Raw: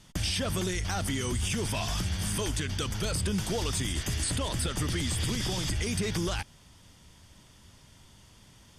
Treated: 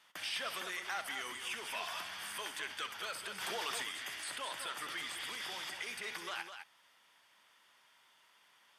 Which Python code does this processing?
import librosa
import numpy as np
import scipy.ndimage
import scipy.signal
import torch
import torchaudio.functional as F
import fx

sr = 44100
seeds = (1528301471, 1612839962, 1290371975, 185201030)

p1 = fx.high_shelf(x, sr, hz=2000.0, db=-8.0)
p2 = fx.rider(p1, sr, range_db=10, speed_s=2.0)
p3 = scipy.signal.sosfilt(scipy.signal.butter(2, 1400.0, 'highpass', fs=sr, output='sos'), p2)
p4 = fx.peak_eq(p3, sr, hz=6800.0, db=-12.5, octaves=1.7)
p5 = p4 + fx.echo_multitap(p4, sr, ms=(64, 207), db=(-12.0, -8.0), dry=0)
p6 = fx.env_flatten(p5, sr, amount_pct=70, at=(3.4, 3.82), fade=0.02)
y = p6 * 10.0 ** (4.5 / 20.0)